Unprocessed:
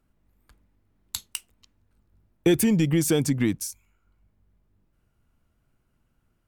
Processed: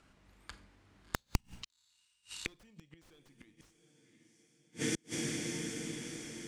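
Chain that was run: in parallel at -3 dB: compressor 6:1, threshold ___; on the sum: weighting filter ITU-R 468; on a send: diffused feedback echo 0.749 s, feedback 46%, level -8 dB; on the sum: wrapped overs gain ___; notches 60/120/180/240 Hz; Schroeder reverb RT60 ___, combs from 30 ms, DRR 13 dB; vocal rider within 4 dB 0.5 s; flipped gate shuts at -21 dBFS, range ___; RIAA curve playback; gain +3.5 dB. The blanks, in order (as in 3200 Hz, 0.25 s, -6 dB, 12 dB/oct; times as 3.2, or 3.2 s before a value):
-32 dBFS, 12.5 dB, 0.4 s, -39 dB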